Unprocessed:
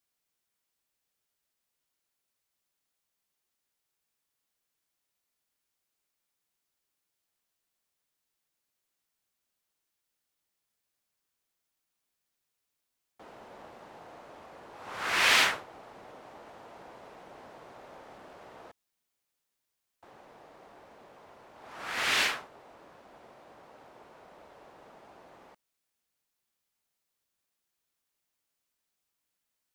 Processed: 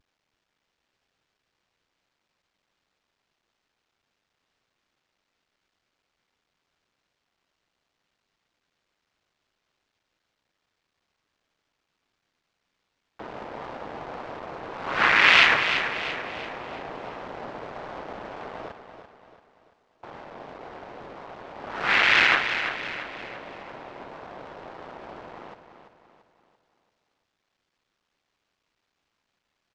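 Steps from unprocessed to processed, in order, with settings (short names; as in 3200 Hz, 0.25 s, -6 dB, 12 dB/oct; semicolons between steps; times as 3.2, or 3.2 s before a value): cycle switcher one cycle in 3, muted; dynamic EQ 2200 Hz, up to +7 dB, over -45 dBFS, Q 1.1; in parallel at -2 dB: negative-ratio compressor -31 dBFS, ratio -0.5; on the sum: vibrato 1.7 Hz 96 cents; Gaussian blur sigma 1.8 samples; on a send: feedback echo 0.339 s, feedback 45%, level -9 dB; on the sum: gain +5.5 dB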